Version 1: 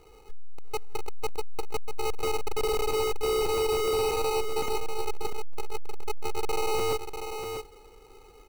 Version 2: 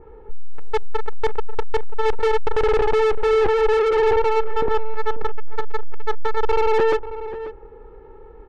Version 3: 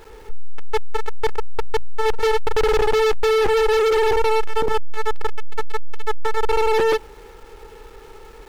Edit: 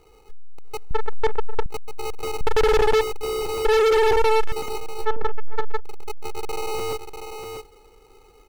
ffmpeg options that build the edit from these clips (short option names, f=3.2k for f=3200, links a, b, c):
-filter_complex "[1:a]asplit=2[a][b];[2:a]asplit=2[c][d];[0:a]asplit=5[e][f][g][h][i];[e]atrim=end=0.912[j];[a]atrim=start=0.908:end=1.662[k];[f]atrim=start=1.658:end=2.412[l];[c]atrim=start=2.408:end=3.012[m];[g]atrim=start=3.008:end=3.652[n];[d]atrim=start=3.648:end=4.522[o];[h]atrim=start=4.518:end=5.07[p];[b]atrim=start=5.01:end=5.81[q];[i]atrim=start=5.75[r];[j][k]acrossfade=d=0.004:c1=hsin:c2=hsin[s];[s][l]acrossfade=d=0.004:c1=hsin:c2=hsin[t];[t][m]acrossfade=d=0.004:c1=hsin:c2=hsin[u];[u][n]acrossfade=d=0.004:c1=hsin:c2=hsin[v];[v][o]acrossfade=d=0.004:c1=hsin:c2=hsin[w];[w][p]acrossfade=d=0.004:c1=hsin:c2=hsin[x];[x][q]acrossfade=d=0.06:c1=tri:c2=tri[y];[y][r]acrossfade=d=0.06:c1=tri:c2=tri"